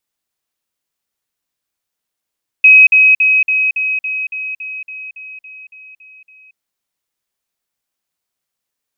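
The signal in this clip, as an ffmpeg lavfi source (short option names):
-f lavfi -i "aevalsrc='pow(10,(-2-3*floor(t/0.28))/20)*sin(2*PI*2540*t)*clip(min(mod(t,0.28),0.23-mod(t,0.28))/0.005,0,1)':d=3.92:s=44100"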